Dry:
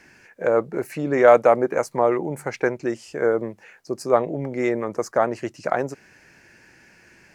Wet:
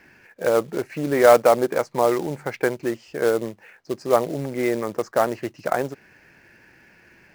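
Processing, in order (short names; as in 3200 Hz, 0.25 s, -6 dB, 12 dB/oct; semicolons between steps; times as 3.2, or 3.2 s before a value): LPF 3900 Hz 12 dB/oct; short-mantissa float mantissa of 2-bit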